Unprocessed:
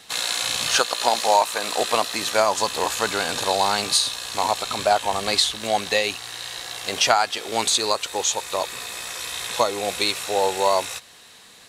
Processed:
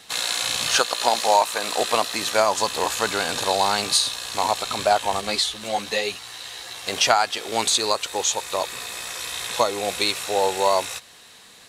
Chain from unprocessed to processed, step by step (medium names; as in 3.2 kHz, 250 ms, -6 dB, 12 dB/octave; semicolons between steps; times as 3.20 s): 5.21–6.87 s: three-phase chorus